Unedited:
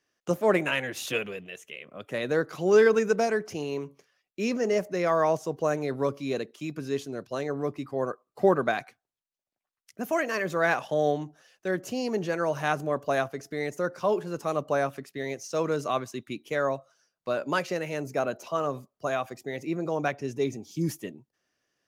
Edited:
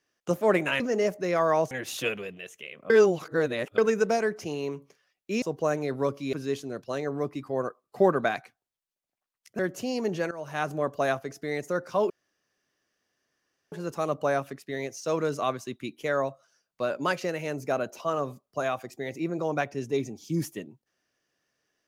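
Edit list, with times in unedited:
1.99–2.87 reverse
4.51–5.42 move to 0.8
6.33–6.76 cut
10.02–11.68 cut
12.4–12.85 fade in, from -17 dB
14.19 insert room tone 1.62 s

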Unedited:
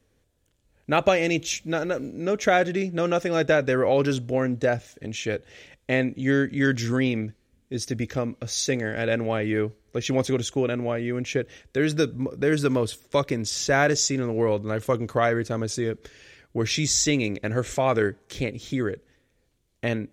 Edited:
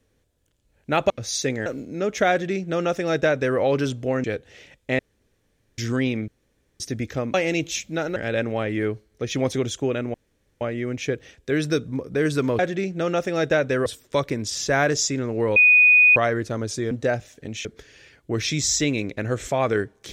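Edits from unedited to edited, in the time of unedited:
1.1–1.92 swap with 8.34–8.9
2.57–3.84 copy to 12.86
4.5–5.24 move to 15.91
5.99–6.78 room tone
7.28–7.8 room tone
10.88 insert room tone 0.47 s
14.56–15.16 bleep 2480 Hz -10.5 dBFS

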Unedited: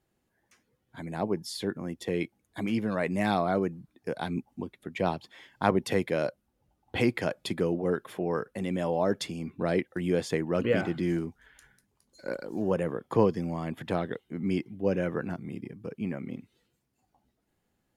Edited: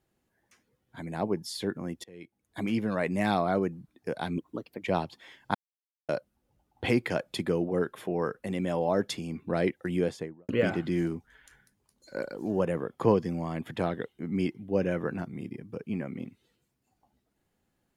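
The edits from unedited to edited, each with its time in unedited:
2.04–2.59 fade in quadratic, from -22 dB
4.38–4.93 speed 126%
5.66–6.2 mute
10.04–10.6 studio fade out

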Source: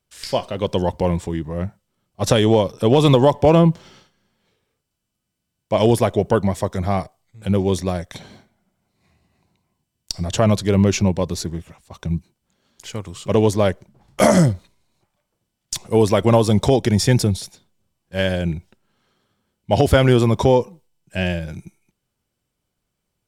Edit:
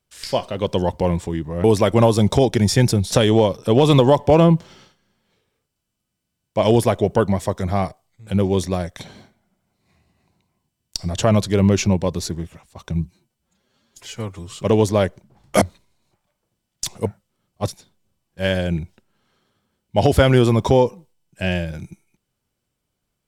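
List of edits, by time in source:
1.64–2.27 swap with 15.95–17.43
12.16–13.17 stretch 1.5×
14.26–14.51 cut

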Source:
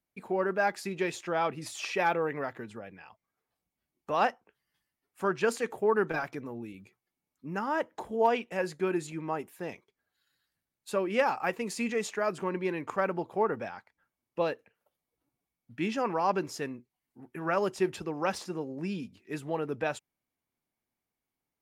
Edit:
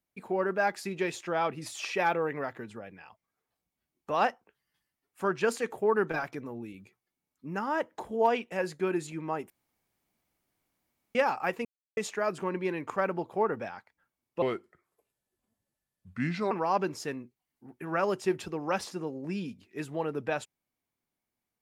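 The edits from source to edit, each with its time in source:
9.5–11.15 room tone
11.65–11.97 mute
14.42–16.05 speed 78%

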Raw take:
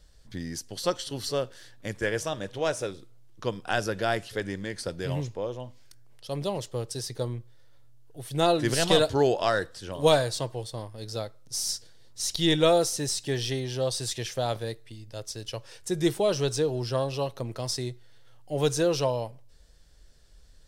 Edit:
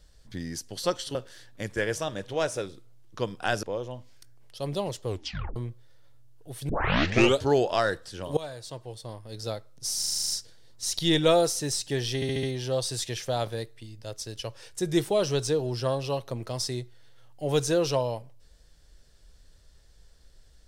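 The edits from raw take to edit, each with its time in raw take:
1.15–1.4 cut
3.88–5.32 cut
6.75 tape stop 0.50 s
8.38 tape start 0.74 s
10.06–11.17 fade in, from -22.5 dB
11.67 stutter 0.04 s, 9 plays
13.52 stutter 0.07 s, 5 plays

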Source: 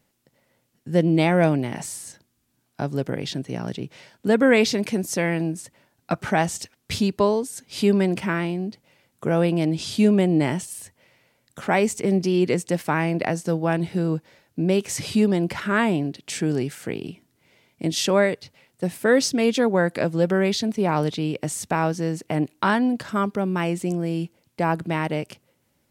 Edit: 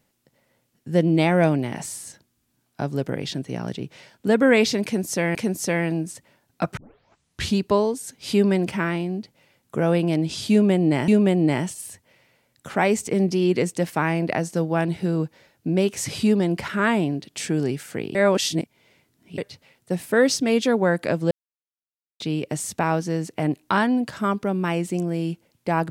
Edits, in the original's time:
4.84–5.35 loop, 2 plays
6.26 tape start 0.79 s
10–10.57 loop, 2 plays
17.07–18.3 reverse
20.23–21.12 mute

